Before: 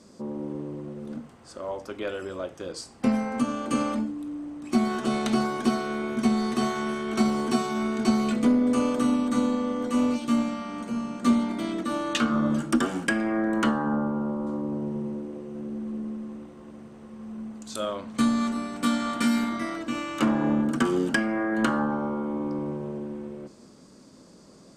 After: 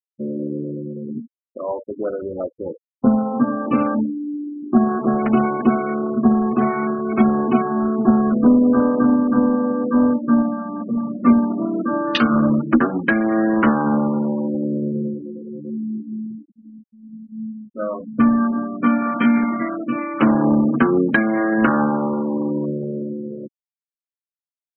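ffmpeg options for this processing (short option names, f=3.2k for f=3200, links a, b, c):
-filter_complex "[0:a]asplit=3[a][b][c];[a]afade=t=out:st=15.1:d=0.02[d];[b]flanger=delay=18:depth=4.9:speed=1.2,afade=t=in:st=15.1:d=0.02,afade=t=out:st=18.07:d=0.02[e];[c]afade=t=in:st=18.07:d=0.02[f];[d][e][f]amix=inputs=3:normalize=0,afwtdn=0.02,afftfilt=real='re*gte(hypot(re,im),0.0282)':imag='im*gte(hypot(re,im),0.0282)':win_size=1024:overlap=0.75,volume=8dB"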